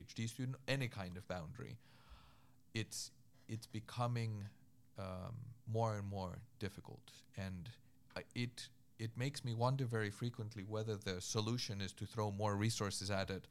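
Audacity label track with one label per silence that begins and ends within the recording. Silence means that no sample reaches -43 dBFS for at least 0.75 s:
1.740000	2.750000	silence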